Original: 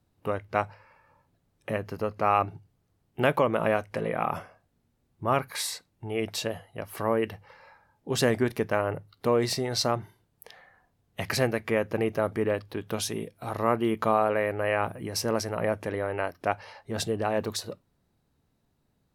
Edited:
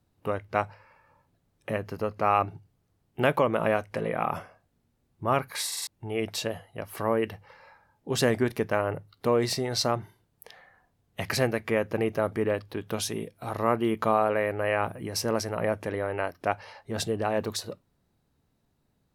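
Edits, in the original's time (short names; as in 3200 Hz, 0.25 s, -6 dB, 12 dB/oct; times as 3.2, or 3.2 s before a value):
5.67 stutter in place 0.05 s, 4 plays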